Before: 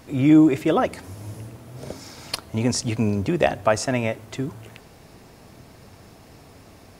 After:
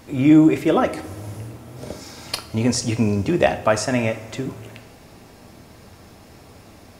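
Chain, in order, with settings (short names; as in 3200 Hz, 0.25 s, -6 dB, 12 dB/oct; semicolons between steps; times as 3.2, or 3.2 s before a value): two-slope reverb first 0.43 s, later 2.7 s, from -17 dB, DRR 7 dB; gain +1.5 dB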